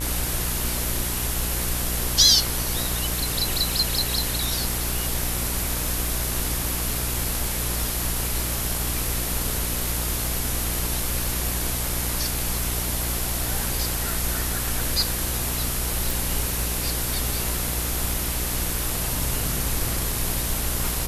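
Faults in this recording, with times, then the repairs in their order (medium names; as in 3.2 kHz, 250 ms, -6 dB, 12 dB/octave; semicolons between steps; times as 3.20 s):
buzz 60 Hz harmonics 32 -30 dBFS
16.11 s: pop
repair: de-click; de-hum 60 Hz, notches 32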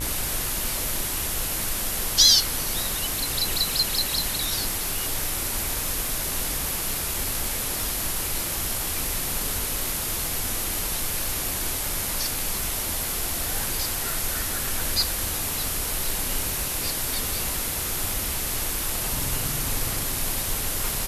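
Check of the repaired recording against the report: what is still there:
nothing left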